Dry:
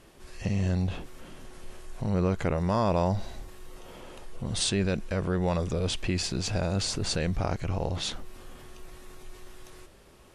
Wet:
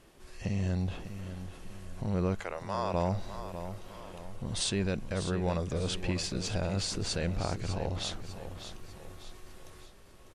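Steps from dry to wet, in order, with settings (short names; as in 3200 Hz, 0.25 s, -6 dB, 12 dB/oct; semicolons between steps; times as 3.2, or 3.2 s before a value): 2.4–2.94 HPF 620 Hz 12 dB/oct; on a send: feedback echo 0.599 s, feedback 44%, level -10.5 dB; on the sum: gain -4 dB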